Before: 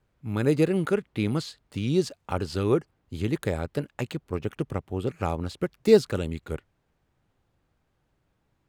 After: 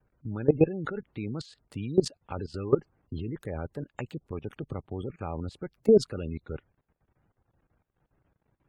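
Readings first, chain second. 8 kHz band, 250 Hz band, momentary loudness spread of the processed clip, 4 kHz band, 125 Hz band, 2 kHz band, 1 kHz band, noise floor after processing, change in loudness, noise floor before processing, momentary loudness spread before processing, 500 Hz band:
-4.5 dB, -3.5 dB, 16 LU, -6.5 dB, -5.0 dB, -8.5 dB, -6.5 dB, -81 dBFS, -3.0 dB, -73 dBFS, 12 LU, -2.0 dB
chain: added harmonics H 3 -43 dB, 5 -25 dB, 7 -34 dB, 8 -32 dB, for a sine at -4.5 dBFS; spectral gate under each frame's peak -25 dB strong; level quantiser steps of 18 dB; gain +2.5 dB

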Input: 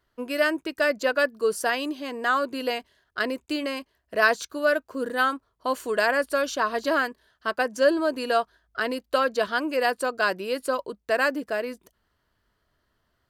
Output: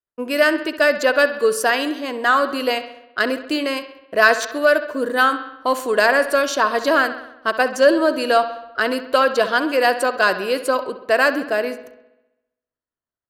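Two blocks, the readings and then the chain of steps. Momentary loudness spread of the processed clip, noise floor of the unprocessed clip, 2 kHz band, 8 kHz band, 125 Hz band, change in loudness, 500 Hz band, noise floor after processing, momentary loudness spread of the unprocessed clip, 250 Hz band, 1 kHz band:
9 LU, -74 dBFS, +7.5 dB, +7.5 dB, n/a, +7.0 dB, +7.0 dB, under -85 dBFS, 9 LU, +6.5 dB, +7.5 dB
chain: expander -55 dBFS; low shelf 130 Hz -9 dB; in parallel at -7 dB: soft clip -17 dBFS, distortion -15 dB; on the sum: analogue delay 66 ms, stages 2048, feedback 62%, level -13 dB; mismatched tape noise reduction decoder only; gain +4.5 dB

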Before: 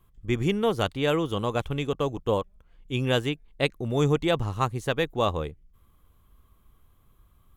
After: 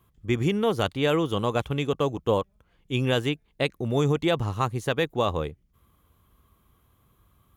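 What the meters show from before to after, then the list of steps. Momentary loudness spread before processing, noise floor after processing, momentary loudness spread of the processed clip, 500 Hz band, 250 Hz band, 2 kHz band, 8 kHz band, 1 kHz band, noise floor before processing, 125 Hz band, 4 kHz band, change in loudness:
6 LU, -66 dBFS, 6 LU, +1.0 dB, +1.0 dB, +0.5 dB, +0.5 dB, +0.5 dB, -61 dBFS, +1.0 dB, +0.5 dB, +1.0 dB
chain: HPF 69 Hz 12 dB/oct; notch 8000 Hz, Q 18; limiter -14.5 dBFS, peak gain reduction 4.5 dB; gain +2 dB

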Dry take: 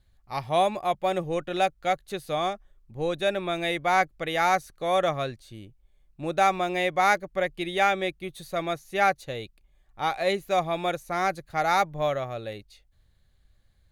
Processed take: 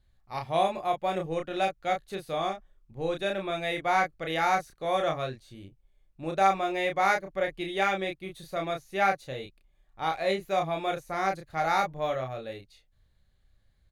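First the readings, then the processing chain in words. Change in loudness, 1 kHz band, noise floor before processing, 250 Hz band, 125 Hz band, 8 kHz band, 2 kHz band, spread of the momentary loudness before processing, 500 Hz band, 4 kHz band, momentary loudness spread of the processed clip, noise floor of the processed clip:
-2.5 dB, -2.5 dB, -64 dBFS, -2.5 dB, -3.0 dB, -5.0 dB, -3.0 dB, 12 LU, -2.5 dB, -3.5 dB, 11 LU, -67 dBFS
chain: high shelf 6800 Hz -5 dB; doubler 31 ms -4 dB; gain -4 dB

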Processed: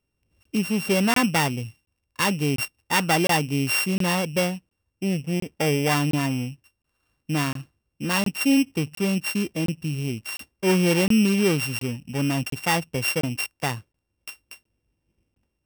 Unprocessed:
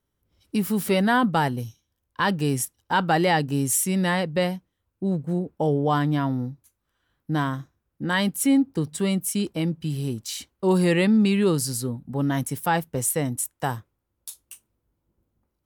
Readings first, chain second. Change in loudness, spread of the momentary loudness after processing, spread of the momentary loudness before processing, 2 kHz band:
+0.5 dB, 12 LU, 11 LU, +2.5 dB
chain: sample sorter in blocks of 16 samples; crackling interface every 0.71 s, samples 1024, zero, from 0.43

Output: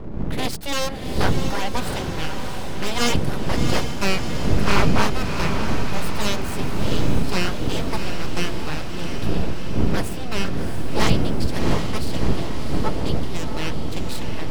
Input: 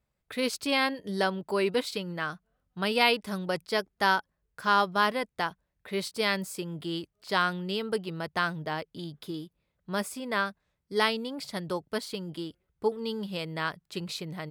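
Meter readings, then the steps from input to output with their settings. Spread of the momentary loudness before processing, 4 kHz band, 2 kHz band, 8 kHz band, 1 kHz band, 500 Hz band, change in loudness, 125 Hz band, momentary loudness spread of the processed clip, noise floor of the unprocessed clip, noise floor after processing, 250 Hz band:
12 LU, +4.5 dB, +1.5 dB, +11.0 dB, +2.0 dB, +3.5 dB, +5.5 dB, +16.0 dB, 7 LU, -80 dBFS, -25 dBFS, +9.0 dB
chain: wind noise 140 Hz -27 dBFS; full-wave rectifier; diffused feedback echo 0.694 s, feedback 65%, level -6 dB; gain +4.5 dB

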